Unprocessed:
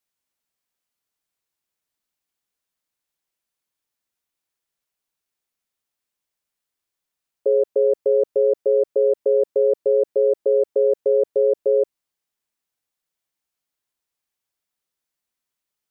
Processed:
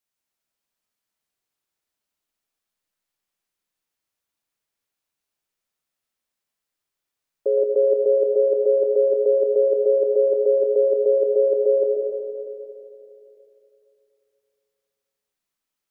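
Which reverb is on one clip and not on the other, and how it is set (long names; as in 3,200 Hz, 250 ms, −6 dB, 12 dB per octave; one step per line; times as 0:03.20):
comb and all-pass reverb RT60 2.9 s, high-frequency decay 0.7×, pre-delay 75 ms, DRR −1 dB
level −2.5 dB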